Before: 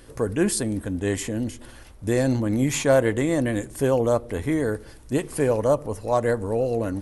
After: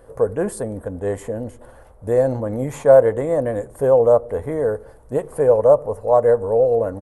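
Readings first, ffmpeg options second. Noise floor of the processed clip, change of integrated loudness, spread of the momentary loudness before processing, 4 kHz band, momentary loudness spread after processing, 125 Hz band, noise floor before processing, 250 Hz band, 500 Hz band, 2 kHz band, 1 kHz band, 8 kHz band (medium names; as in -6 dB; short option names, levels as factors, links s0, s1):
-46 dBFS, +5.5 dB, 8 LU, under -10 dB, 14 LU, -1.5 dB, -45 dBFS, -4.5 dB, +8.0 dB, -4.5 dB, +5.5 dB, no reading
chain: -af "firequalizer=gain_entry='entry(140,0);entry(330,-5);entry(470,11);entry(2500,-12);entry(5300,-15);entry(8600,-6)':delay=0.05:min_phase=1,volume=0.841"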